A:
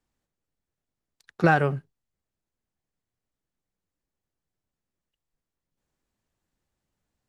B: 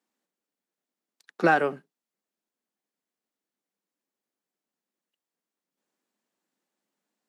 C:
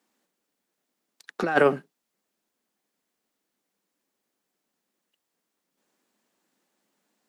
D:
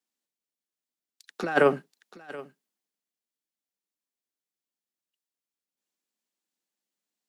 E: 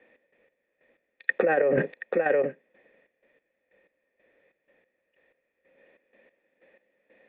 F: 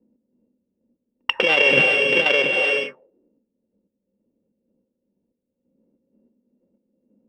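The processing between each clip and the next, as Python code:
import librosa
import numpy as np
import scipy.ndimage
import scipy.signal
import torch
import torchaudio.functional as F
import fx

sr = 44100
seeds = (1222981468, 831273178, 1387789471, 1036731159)

y1 = scipy.signal.sosfilt(scipy.signal.butter(6, 200.0, 'highpass', fs=sr, output='sos'), x)
y2 = fx.over_compress(y1, sr, threshold_db=-24.0, ratio=-0.5)
y2 = y2 * librosa.db_to_amplitude(5.0)
y3 = y2 + 10.0 ** (-14.0 / 20.0) * np.pad(y2, (int(728 * sr / 1000.0), 0))[:len(y2)]
y3 = fx.band_widen(y3, sr, depth_pct=40)
y3 = y3 * librosa.db_to_amplitude(-4.0)
y4 = fx.formant_cascade(y3, sr, vowel='e')
y4 = fx.step_gate(y4, sr, bpm=93, pattern='x.x..x..x', floor_db=-12.0, edge_ms=4.5)
y4 = fx.env_flatten(y4, sr, amount_pct=100)
y4 = y4 * librosa.db_to_amplitude(7.0)
y5 = np.r_[np.sort(y4[:len(y4) // 16 * 16].reshape(-1, 16), axis=1).ravel(), y4[len(y4) // 16 * 16:]]
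y5 = fx.rev_gated(y5, sr, seeds[0], gate_ms=440, shape='rising', drr_db=2.0)
y5 = fx.envelope_lowpass(y5, sr, base_hz=220.0, top_hz=3100.0, q=3.5, full_db=-23.0, direction='up')
y5 = y5 * librosa.db_to_amplitude(1.0)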